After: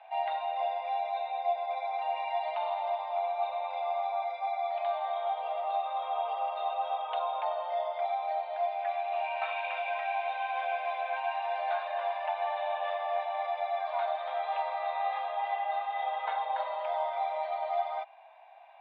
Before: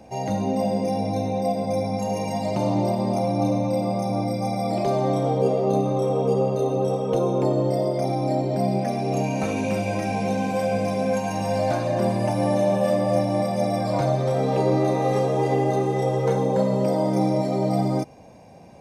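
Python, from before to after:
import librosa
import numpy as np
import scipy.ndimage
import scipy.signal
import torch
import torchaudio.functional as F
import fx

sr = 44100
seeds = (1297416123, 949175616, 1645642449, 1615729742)

y = scipy.signal.sosfilt(scipy.signal.cheby1(5, 1.0, [670.0, 3700.0], 'bandpass', fs=sr, output='sos'), x)
y = fx.rider(y, sr, range_db=10, speed_s=0.5)
y = F.gain(torch.from_numpy(y), -1.5).numpy()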